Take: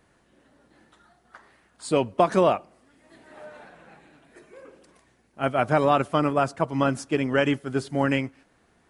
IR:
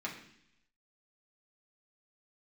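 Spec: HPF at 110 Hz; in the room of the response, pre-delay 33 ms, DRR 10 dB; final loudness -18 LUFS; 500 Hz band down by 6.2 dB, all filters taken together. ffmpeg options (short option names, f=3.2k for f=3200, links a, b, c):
-filter_complex "[0:a]highpass=110,equalizer=f=500:t=o:g=-8,asplit=2[a][b];[1:a]atrim=start_sample=2205,adelay=33[c];[b][c]afir=irnorm=-1:irlink=0,volume=-12.5dB[d];[a][d]amix=inputs=2:normalize=0,volume=8.5dB"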